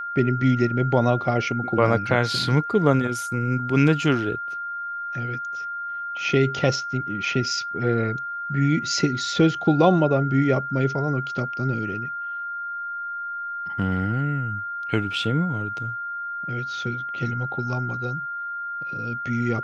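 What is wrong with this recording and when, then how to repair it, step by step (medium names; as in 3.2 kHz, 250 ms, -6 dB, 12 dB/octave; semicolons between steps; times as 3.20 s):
whine 1.4 kHz -28 dBFS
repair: band-stop 1.4 kHz, Q 30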